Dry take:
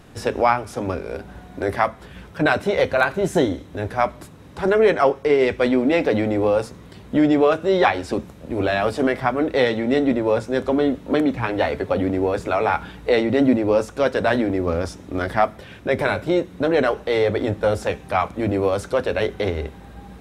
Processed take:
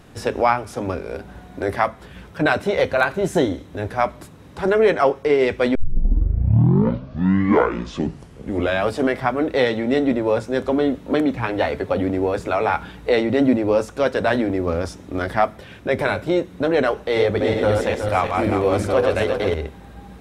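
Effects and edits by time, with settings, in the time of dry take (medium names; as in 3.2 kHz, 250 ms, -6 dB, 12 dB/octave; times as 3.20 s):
5.75 s: tape start 3.15 s
16.98–19.54 s: backward echo that repeats 185 ms, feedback 61%, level -3 dB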